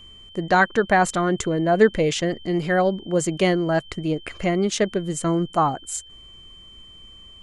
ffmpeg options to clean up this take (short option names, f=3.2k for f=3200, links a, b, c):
-af "bandreject=f=3.1k:w=30"